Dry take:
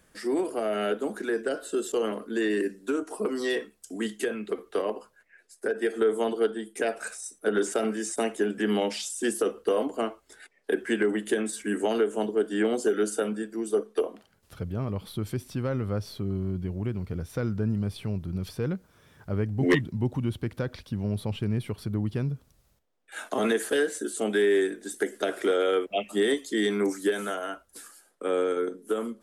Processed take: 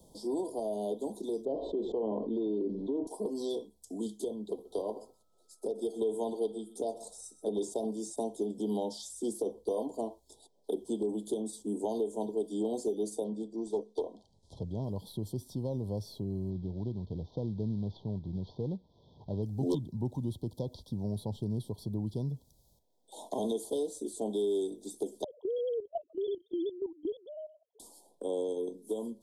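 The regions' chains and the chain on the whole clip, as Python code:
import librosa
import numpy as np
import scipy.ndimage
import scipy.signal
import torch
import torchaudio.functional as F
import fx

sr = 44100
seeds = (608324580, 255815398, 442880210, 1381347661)

y = fx.chain(x, sr, fx.lowpass(hz=2200.0, slope=24),
    fx.env_flatten(amount_pct=70), at=(1.45, 3.07))
y = fx.echo_single(y, sr, ms=127, db=-17.5, at=(4.64, 7.55), fade=0.02)
y = fx.dmg_tone(y, sr, hz=1300.0, level_db=-36.0, at=(4.64, 7.55), fade=0.02)
y = fx.chain(y, sr, fx.self_delay(depth_ms=0.12),
    fx.lowpass(hz=6300.0, slope=12),
    fx.resample_bad(factor=2, down='none', up='filtered'), at=(13.24, 14.84))
y = fx.chain(y, sr, fx.cvsd(bps=32000),
    fx.air_absorb(metres=330.0), at=(16.5, 19.43))
y = fx.chain(y, sr, fx.sine_speech(),
    fx.level_steps(step_db=13), at=(25.24, 27.8))
y = scipy.signal.sosfilt(scipy.signal.cheby1(5, 1.0, [990.0, 3200.0], 'bandstop', fs=sr, output='sos'), y)
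y = fx.band_shelf(y, sr, hz=2100.0, db=-15.0, octaves=1.1)
y = fx.band_squash(y, sr, depth_pct=40)
y = F.gain(torch.from_numpy(y), -6.0).numpy()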